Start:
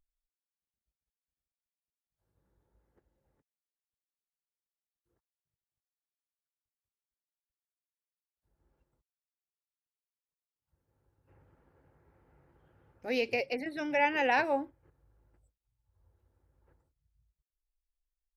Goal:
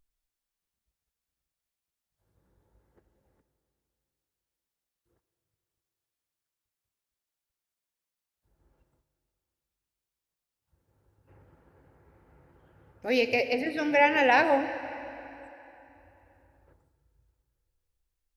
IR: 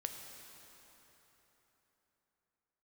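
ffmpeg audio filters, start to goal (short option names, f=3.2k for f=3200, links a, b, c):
-filter_complex "[0:a]asplit=2[a][b];[1:a]atrim=start_sample=2205,asetrate=52920,aresample=44100[c];[b][c]afir=irnorm=-1:irlink=0,volume=3.5dB[d];[a][d]amix=inputs=2:normalize=0"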